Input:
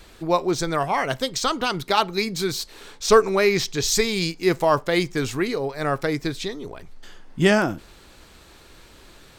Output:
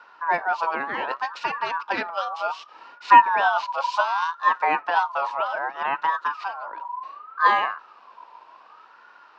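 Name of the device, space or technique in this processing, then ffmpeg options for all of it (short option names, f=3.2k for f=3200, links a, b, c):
voice changer toy: -af "aeval=exprs='val(0)*sin(2*PI*1200*n/s+1200*0.2/0.66*sin(2*PI*0.66*n/s))':c=same,highpass=440,equalizer=f=960:t=q:w=4:g=10,equalizer=f=2.1k:t=q:w=4:g=-8,equalizer=f=3.3k:t=q:w=4:g=-9,lowpass=f=3.6k:w=0.5412,lowpass=f=3.6k:w=1.3066"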